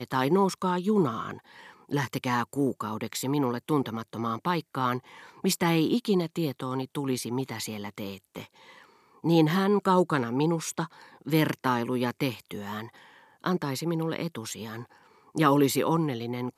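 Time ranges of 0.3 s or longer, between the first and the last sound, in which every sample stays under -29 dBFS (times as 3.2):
1.33–1.92
4.98–5.44
8.42–9.24
10.85–11.27
12.84–13.44
14.76–15.36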